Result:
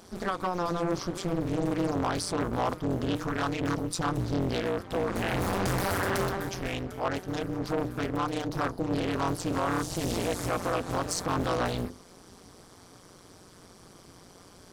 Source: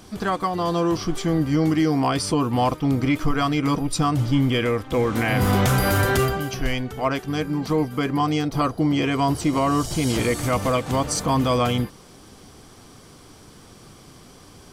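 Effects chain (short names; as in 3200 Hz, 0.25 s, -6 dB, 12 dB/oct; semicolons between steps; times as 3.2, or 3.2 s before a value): HPF 89 Hz 6 dB/oct; bell 2800 Hz -4.5 dB 0.67 oct; notches 50/100/150/200/250/300/350 Hz; soft clip -18.5 dBFS, distortion -14 dB; AM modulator 180 Hz, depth 90%; Doppler distortion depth 0.72 ms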